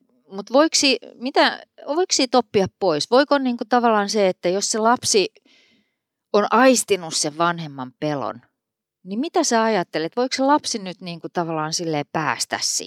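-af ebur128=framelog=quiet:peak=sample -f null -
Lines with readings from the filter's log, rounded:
Integrated loudness:
  I:         -19.8 LUFS
  Threshold: -30.4 LUFS
Loudness range:
  LRA:         3.7 LU
  Threshold: -40.5 LUFS
  LRA low:   -22.6 LUFS
  LRA high:  -18.9 LUFS
Sample peak:
  Peak:       -3.9 dBFS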